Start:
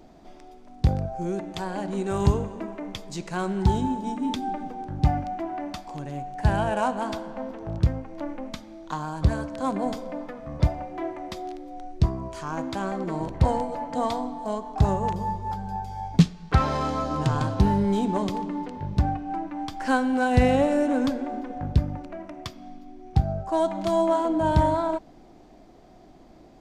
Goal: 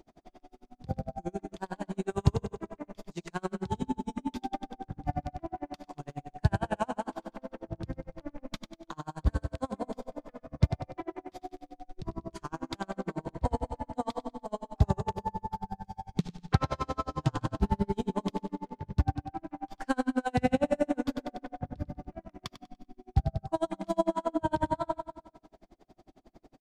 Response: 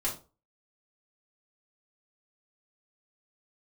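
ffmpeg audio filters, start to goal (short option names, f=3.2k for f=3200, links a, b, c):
-af "aecho=1:1:97|194|291|388|485|582|679:0.376|0.218|0.126|0.0733|0.0425|0.0247|0.0143,aeval=exprs='val(0)*pow(10,-38*(0.5-0.5*cos(2*PI*11*n/s))/20)':c=same,volume=-1.5dB"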